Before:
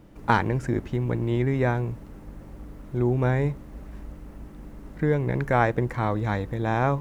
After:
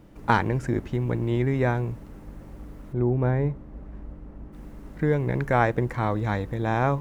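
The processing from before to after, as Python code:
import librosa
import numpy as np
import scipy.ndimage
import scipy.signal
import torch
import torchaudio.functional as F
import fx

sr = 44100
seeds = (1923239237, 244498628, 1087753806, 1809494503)

y = fx.lowpass(x, sr, hz=1100.0, slope=6, at=(2.92, 4.52), fade=0.02)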